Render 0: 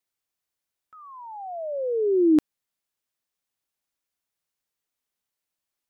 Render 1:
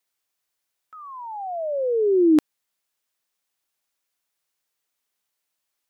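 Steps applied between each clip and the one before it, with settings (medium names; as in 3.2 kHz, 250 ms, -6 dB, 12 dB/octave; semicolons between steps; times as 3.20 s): bass shelf 310 Hz -8.5 dB; trim +6 dB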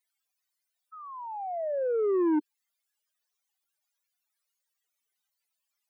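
spectral contrast enhancement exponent 3.8; saturation -19 dBFS, distortion -12 dB; trim -3 dB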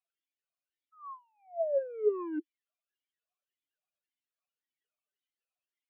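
talking filter a-i 1.8 Hz; trim +5.5 dB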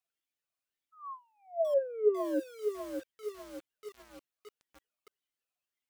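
bit-crushed delay 599 ms, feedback 55%, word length 8-bit, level -6.5 dB; trim +1.5 dB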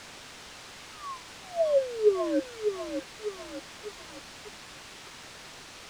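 in parallel at -3.5 dB: word length cut 6-bit, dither triangular; on the sum: distance through air 100 m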